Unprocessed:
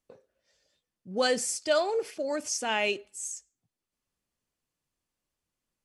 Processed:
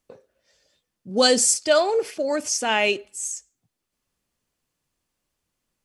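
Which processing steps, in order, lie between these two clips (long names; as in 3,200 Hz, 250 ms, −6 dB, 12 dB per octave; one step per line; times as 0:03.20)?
0:01.09–0:01.54: octave-band graphic EQ 125/250/2,000/4,000/8,000 Hz −11/+6/−4/+5/+6 dB
level +7 dB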